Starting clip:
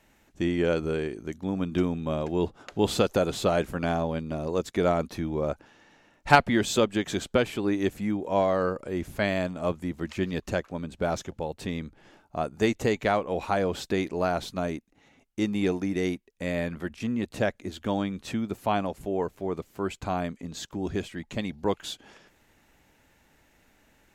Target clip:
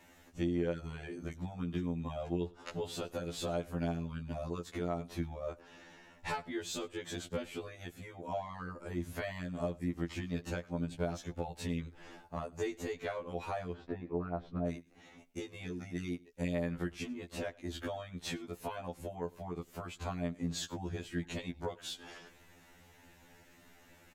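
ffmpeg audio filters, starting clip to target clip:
-filter_complex "[0:a]asettb=1/sr,asplit=3[s0][s1][s2];[s0]atrim=end=13.734[s3];[s1]atrim=start=13.73:end=14.67,asetpts=PTS-STARTPTS,afade=t=in:d=0.004:c=qsin,afade=t=out:st=0.936:d=0.004:c=qsin,lowpass=1200[s4];[s2]atrim=start=14.666[s5];[s3][s4]acrossfade=d=0.004:c1=hsin:c2=qsin[s6];[s6][s5]acrossfade=d=0.004:c1=qsin:c2=hsin,acompressor=threshold=0.0141:ratio=12,aecho=1:1:101:0.0668,afftfilt=real='re*2*eq(mod(b,4),0)':imag='im*2*eq(mod(b,4),0)':win_size=2048:overlap=0.75,volume=1.68"

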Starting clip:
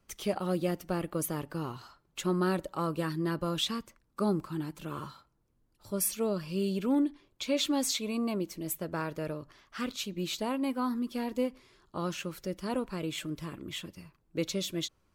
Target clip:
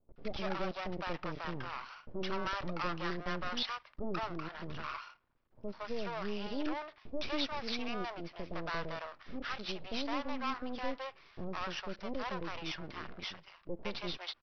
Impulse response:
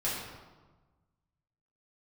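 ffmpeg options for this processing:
-filter_complex "[0:a]acrossover=split=530 2700:gain=0.2 1 0.224[s0][s1][s2];[s0][s1][s2]amix=inputs=3:normalize=0,aeval=exprs='(tanh(28.2*val(0)+0.7)-tanh(0.7))/28.2':c=same,aresample=11025,aeval=exprs='max(val(0),0)':c=same,aresample=44100,asetrate=46305,aresample=44100,acrossover=split=600[s3][s4];[s4]adelay=160[s5];[s3][s5]amix=inputs=2:normalize=0,volume=5.01"

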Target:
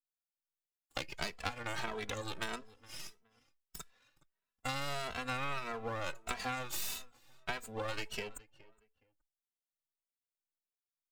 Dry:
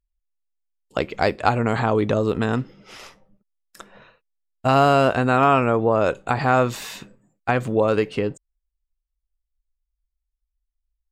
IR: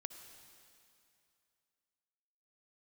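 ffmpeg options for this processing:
-filter_complex "[0:a]aderivative,afftdn=nr=12:nf=-50,adynamicequalizer=threshold=0.00178:dfrequency=8000:dqfactor=0.75:tfrequency=8000:tqfactor=0.75:attack=5:release=100:ratio=0.375:range=2.5:mode=cutabove:tftype=bell,acompressor=threshold=0.0112:ratio=8,aeval=exprs='max(val(0),0)':c=same,asplit=2[s0][s1];[s1]adelay=418,lowpass=f=2100:p=1,volume=0.1,asplit=2[s2][s3];[s3]adelay=418,lowpass=f=2100:p=1,volume=0.26[s4];[s2][s4]amix=inputs=2:normalize=0[s5];[s0][s5]amix=inputs=2:normalize=0,asplit=2[s6][s7];[s7]adelay=2.7,afreqshift=1.6[s8];[s6][s8]amix=inputs=2:normalize=1,volume=3.76"

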